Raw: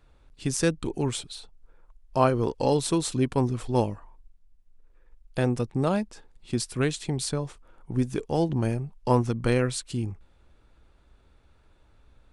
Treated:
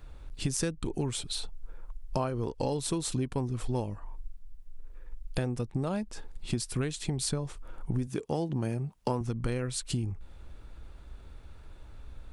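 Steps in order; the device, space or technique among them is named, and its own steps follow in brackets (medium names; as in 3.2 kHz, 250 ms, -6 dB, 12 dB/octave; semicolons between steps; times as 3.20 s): 8.07–9.21 s: high-pass 120 Hz 12 dB/octave; ASMR close-microphone chain (bass shelf 110 Hz +7.5 dB; compression 8:1, threshold -34 dBFS, peak gain reduction 18.5 dB; treble shelf 9.9 kHz +5 dB); trim +6 dB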